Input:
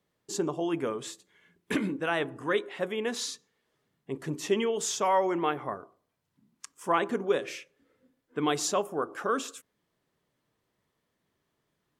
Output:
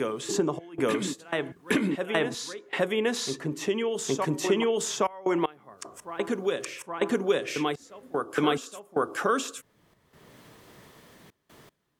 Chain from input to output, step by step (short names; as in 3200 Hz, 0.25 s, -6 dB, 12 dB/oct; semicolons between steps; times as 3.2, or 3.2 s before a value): step gate "xxx.xxxxxx.x..xx" 77 bpm -24 dB; reverse echo 0.82 s -7 dB; three-band squash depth 70%; gain +4.5 dB